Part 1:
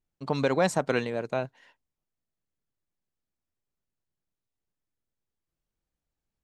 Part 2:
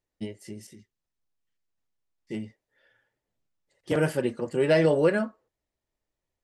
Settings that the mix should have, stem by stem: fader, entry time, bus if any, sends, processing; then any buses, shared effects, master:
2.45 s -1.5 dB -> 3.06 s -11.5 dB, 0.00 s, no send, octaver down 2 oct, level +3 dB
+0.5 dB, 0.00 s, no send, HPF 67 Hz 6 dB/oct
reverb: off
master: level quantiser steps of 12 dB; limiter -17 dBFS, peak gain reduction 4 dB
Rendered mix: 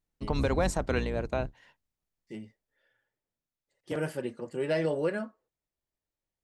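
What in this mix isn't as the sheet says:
stem 2 +0.5 dB -> -7.5 dB; master: missing level quantiser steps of 12 dB

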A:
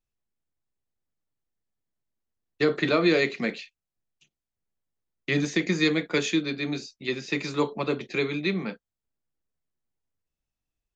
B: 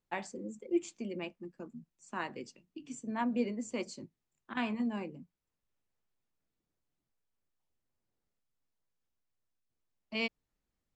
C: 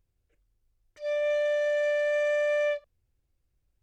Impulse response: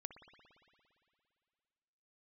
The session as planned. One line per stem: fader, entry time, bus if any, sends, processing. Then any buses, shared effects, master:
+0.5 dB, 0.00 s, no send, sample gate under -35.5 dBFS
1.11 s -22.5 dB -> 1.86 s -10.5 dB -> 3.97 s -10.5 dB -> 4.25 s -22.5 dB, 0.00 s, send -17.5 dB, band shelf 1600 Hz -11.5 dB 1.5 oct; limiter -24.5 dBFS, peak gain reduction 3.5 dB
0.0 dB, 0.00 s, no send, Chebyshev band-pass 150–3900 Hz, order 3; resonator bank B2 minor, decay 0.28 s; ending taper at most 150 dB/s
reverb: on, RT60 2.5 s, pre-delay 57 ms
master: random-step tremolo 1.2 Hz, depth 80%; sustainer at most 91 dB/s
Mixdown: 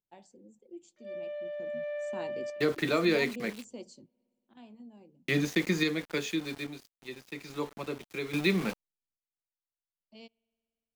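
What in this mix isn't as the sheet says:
stem B -22.5 dB -> -12.5 dB; master: missing sustainer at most 91 dB/s

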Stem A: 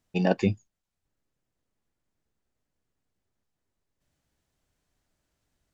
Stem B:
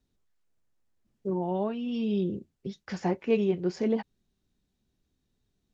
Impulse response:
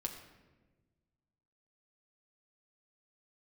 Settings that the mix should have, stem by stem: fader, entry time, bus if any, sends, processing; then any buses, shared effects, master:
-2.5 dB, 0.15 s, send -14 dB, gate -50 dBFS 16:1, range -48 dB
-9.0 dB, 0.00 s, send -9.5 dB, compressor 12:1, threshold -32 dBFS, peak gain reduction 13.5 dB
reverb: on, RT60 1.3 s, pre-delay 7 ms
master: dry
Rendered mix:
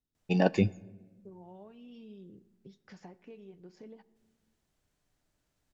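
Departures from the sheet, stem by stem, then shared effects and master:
stem A: missing gate -50 dBFS 16:1, range -48 dB; stem B -9.0 dB -> -16.0 dB

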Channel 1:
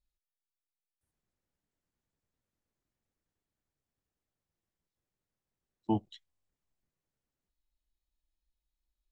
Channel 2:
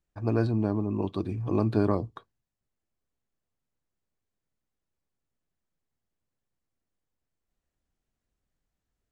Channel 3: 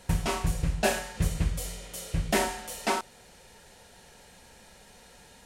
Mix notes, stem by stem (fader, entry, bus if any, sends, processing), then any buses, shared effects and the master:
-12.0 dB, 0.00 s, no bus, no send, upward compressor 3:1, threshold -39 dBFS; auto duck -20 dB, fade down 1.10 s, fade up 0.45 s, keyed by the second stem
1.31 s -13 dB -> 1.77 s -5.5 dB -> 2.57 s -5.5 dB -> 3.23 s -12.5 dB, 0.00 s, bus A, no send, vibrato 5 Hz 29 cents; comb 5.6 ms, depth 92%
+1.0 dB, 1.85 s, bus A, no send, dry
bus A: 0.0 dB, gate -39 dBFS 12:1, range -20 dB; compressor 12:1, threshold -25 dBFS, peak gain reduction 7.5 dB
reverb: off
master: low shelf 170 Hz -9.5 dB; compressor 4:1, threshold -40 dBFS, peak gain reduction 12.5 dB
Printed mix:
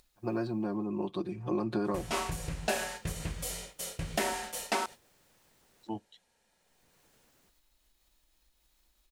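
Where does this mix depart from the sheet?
stem 1 -12.0 dB -> -6.0 dB; stem 2 -13.0 dB -> -3.5 dB; master: missing compressor 4:1, threshold -40 dBFS, peak gain reduction 12.5 dB

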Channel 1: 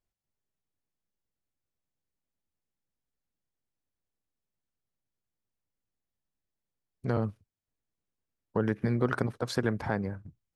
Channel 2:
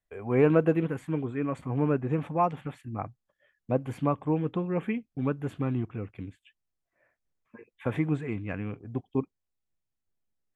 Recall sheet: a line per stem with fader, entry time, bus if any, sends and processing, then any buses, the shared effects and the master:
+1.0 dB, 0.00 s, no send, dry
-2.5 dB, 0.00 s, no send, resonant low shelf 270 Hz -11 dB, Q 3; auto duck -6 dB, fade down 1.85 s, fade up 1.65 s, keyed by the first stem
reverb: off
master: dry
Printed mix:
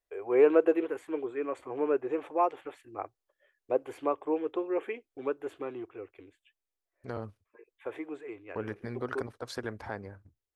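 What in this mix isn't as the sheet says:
stem 1 +1.0 dB -> -5.5 dB; master: extra bell 160 Hz -15 dB 0.85 oct

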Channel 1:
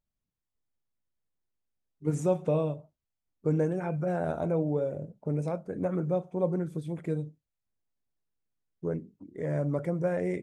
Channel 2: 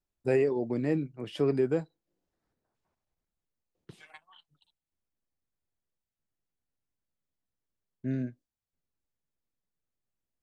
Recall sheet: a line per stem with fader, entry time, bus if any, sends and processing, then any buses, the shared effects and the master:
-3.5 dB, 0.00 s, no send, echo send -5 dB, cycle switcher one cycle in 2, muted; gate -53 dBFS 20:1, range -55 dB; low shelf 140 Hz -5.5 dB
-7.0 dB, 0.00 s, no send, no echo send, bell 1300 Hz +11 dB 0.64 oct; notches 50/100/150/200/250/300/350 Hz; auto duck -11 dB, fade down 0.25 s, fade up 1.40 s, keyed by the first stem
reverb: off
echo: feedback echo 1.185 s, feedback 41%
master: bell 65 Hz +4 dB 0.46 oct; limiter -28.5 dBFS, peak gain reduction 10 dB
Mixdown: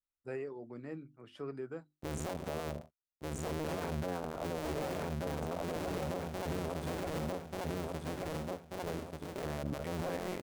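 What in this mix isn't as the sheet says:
stem 1 -3.5 dB -> +5.5 dB; stem 2 -7.0 dB -> -15.5 dB

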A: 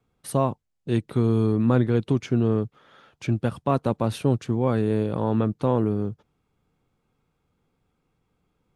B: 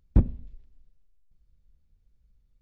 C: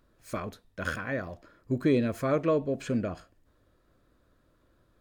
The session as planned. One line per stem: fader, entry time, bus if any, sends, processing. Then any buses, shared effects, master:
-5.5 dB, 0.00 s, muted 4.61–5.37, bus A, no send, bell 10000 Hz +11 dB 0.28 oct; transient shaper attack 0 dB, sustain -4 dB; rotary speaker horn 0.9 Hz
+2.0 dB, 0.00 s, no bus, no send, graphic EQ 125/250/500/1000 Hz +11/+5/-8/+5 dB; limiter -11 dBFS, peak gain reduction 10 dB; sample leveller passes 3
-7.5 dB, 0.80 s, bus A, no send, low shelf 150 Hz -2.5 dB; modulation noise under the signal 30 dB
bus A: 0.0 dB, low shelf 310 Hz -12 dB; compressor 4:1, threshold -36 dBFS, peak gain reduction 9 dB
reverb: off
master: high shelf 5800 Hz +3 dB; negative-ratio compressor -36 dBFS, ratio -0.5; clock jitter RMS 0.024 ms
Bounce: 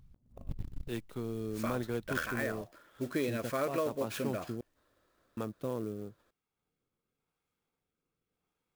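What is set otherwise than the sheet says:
stem A -5.5 dB -> -14.0 dB; stem C: entry 0.80 s -> 1.30 s

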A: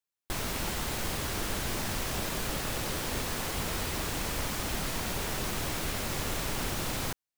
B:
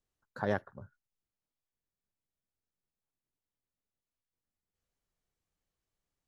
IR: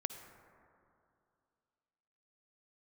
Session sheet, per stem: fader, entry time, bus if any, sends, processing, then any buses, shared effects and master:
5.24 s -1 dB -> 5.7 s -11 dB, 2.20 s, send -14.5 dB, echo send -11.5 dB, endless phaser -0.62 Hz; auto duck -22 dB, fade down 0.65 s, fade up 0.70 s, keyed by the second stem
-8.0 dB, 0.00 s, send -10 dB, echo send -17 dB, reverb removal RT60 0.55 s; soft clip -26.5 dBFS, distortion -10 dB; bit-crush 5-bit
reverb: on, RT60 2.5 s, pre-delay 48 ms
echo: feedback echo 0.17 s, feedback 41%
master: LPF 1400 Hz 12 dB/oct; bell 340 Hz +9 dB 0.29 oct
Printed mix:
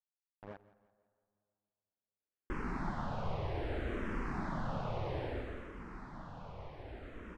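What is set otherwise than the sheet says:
stem B -8.0 dB -> -17.0 dB; master: missing bell 340 Hz +9 dB 0.29 oct

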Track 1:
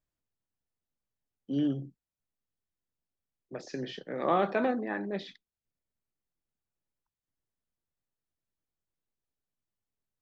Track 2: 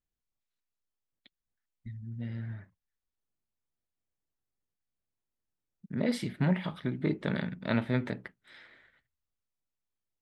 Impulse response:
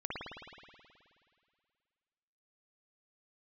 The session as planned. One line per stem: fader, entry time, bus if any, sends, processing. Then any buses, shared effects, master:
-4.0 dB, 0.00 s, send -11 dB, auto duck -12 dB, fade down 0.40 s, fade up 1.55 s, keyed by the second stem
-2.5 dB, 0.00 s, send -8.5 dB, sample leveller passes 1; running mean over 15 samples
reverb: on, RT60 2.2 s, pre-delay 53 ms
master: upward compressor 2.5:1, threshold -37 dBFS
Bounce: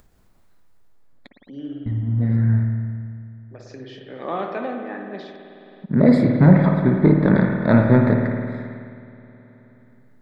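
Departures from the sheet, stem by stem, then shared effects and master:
stem 2 -2.5 dB -> +8.0 dB; reverb return +7.5 dB

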